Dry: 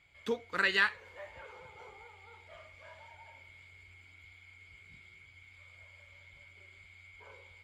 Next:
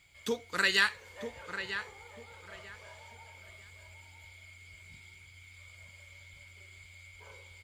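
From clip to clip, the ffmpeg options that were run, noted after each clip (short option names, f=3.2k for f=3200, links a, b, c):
-filter_complex "[0:a]bass=f=250:g=3,treble=f=4k:g=14,asplit=2[a][b];[b]adelay=944,lowpass=f=2.5k:p=1,volume=-8.5dB,asplit=2[c][d];[d]adelay=944,lowpass=f=2.5k:p=1,volume=0.25,asplit=2[e][f];[f]adelay=944,lowpass=f=2.5k:p=1,volume=0.25[g];[a][c][e][g]amix=inputs=4:normalize=0"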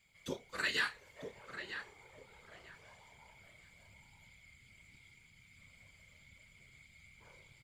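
-filter_complex "[0:a]afftfilt=real='hypot(re,im)*cos(2*PI*random(0))':imag='hypot(re,im)*sin(2*PI*random(1))':win_size=512:overlap=0.75,asplit=2[a][b];[b]adelay=31,volume=-11.5dB[c];[a][c]amix=inputs=2:normalize=0,volume=-2.5dB"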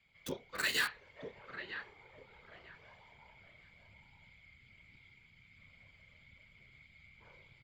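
-filter_complex "[0:a]highshelf=f=6.9k:g=12,acrossover=split=110|4100[a][b][c];[c]acrusher=bits=6:mix=0:aa=0.000001[d];[a][b][d]amix=inputs=3:normalize=0"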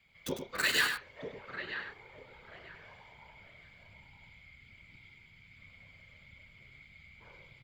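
-af "aecho=1:1:100:0.422,volume=4dB"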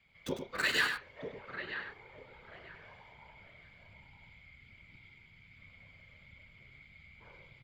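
-af "lowpass=f=3.9k:p=1"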